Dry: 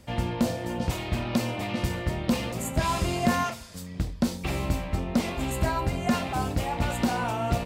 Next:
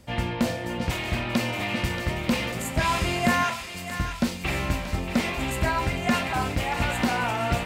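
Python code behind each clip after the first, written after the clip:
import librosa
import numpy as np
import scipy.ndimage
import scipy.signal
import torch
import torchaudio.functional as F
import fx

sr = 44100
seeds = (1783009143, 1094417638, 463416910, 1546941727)

y = fx.dynamic_eq(x, sr, hz=2100.0, q=0.93, threshold_db=-46.0, ratio=4.0, max_db=8)
y = fx.echo_thinned(y, sr, ms=631, feedback_pct=61, hz=1000.0, wet_db=-8.0)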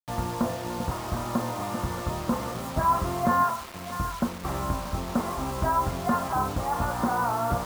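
y = fx.high_shelf_res(x, sr, hz=1700.0, db=-13.5, q=3.0)
y = fx.quant_dither(y, sr, seeds[0], bits=6, dither='none')
y = y * 10.0 ** (-3.0 / 20.0)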